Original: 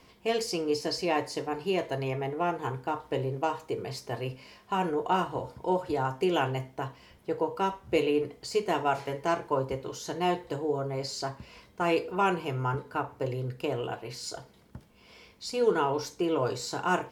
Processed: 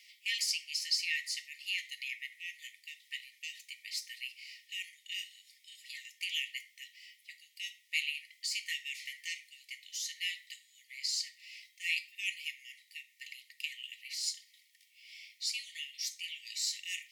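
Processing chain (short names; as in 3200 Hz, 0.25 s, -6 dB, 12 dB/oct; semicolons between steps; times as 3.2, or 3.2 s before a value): brick-wall FIR high-pass 1800 Hz; gain +3.5 dB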